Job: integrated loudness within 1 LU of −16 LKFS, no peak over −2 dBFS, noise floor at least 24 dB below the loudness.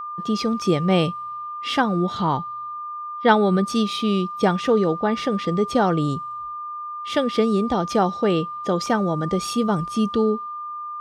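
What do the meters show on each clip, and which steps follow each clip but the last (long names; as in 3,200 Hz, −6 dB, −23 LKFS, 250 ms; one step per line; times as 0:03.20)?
number of dropouts 2; longest dropout 2.1 ms; interfering tone 1,200 Hz; level of the tone −29 dBFS; integrated loudness −22.5 LKFS; sample peak −3.0 dBFS; target loudness −16.0 LKFS
→ repair the gap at 0:00.62/0:08.86, 2.1 ms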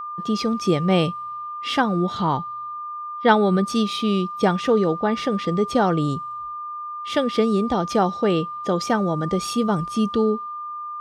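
number of dropouts 0; interfering tone 1,200 Hz; level of the tone −29 dBFS
→ notch filter 1,200 Hz, Q 30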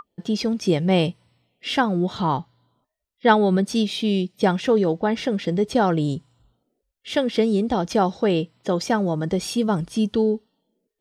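interfering tone none found; integrated loudness −22.0 LKFS; sample peak −3.0 dBFS; target loudness −16.0 LKFS
→ level +6 dB
brickwall limiter −2 dBFS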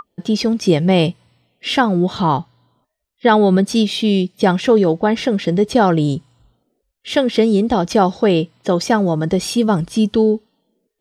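integrated loudness −16.5 LKFS; sample peak −2.0 dBFS; background noise floor −75 dBFS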